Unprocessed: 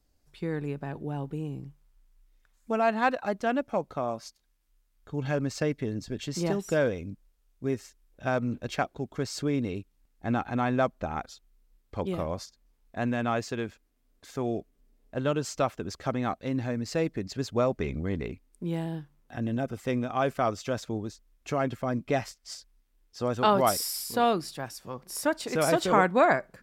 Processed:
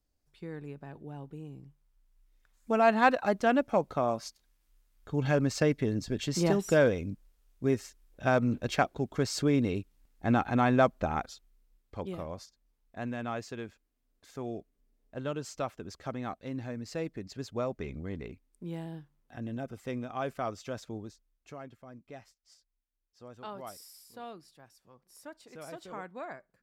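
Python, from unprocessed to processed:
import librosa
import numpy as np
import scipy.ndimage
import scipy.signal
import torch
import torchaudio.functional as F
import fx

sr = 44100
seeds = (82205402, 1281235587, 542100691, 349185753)

y = fx.gain(x, sr, db=fx.line((1.61, -9.5), (2.9, 2.0), (11.09, 2.0), (12.18, -7.5), (21.03, -7.5), (21.78, -20.0)))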